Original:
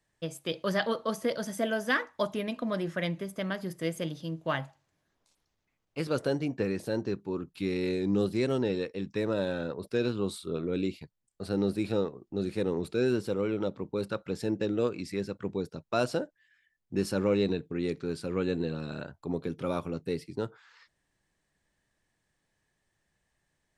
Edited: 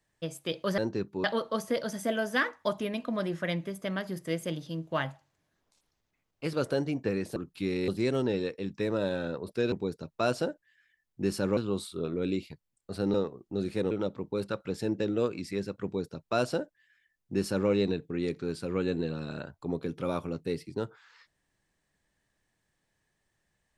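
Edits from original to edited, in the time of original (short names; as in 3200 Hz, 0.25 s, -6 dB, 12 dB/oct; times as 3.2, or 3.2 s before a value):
6.9–7.36 move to 0.78
7.88–8.24 cut
11.65–11.95 cut
12.72–13.52 cut
15.45–17.3 copy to 10.08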